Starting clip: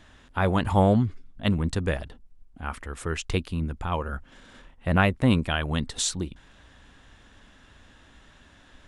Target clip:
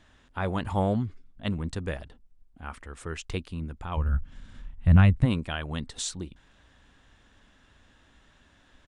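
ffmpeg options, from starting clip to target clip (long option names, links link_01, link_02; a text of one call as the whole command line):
ffmpeg -i in.wav -filter_complex "[0:a]asplit=3[link_01][link_02][link_03];[link_01]afade=type=out:start_time=3.96:duration=0.02[link_04];[link_02]asubboost=boost=9:cutoff=150,afade=type=in:start_time=3.96:duration=0.02,afade=type=out:start_time=5.24:duration=0.02[link_05];[link_03]afade=type=in:start_time=5.24:duration=0.02[link_06];[link_04][link_05][link_06]amix=inputs=3:normalize=0,aresample=22050,aresample=44100,volume=-6dB" out.wav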